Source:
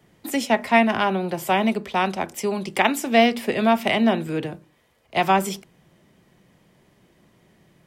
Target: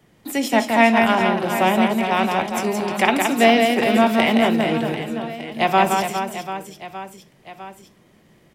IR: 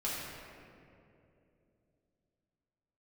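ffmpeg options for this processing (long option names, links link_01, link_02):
-filter_complex "[0:a]atempo=0.92,aecho=1:1:170|408|741.2|1208|1861:0.631|0.398|0.251|0.158|0.1,asplit=2[link_01][link_02];[1:a]atrim=start_sample=2205,atrim=end_sample=3528[link_03];[link_02][link_03]afir=irnorm=-1:irlink=0,volume=-12.5dB[link_04];[link_01][link_04]amix=inputs=2:normalize=0"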